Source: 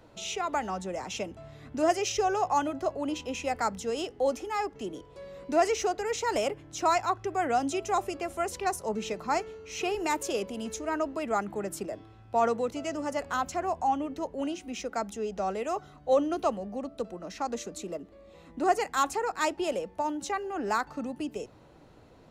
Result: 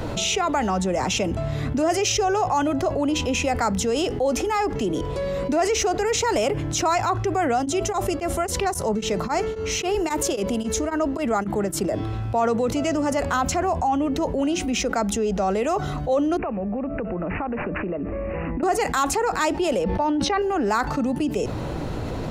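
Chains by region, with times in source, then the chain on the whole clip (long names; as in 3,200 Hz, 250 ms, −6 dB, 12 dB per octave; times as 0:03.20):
0:07.53–0:11.94: notch filter 2,500 Hz, Q 16 + tremolo along a rectified sine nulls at 3.7 Hz
0:16.37–0:18.63: downward compressor, threshold −46 dBFS + bad sample-rate conversion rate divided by 8×, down none, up filtered
0:19.84–0:20.42: Savitzky-Golay smoothing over 15 samples + level that may fall only so fast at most 41 dB per second
whole clip: low-shelf EQ 200 Hz +7.5 dB; envelope flattener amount 70%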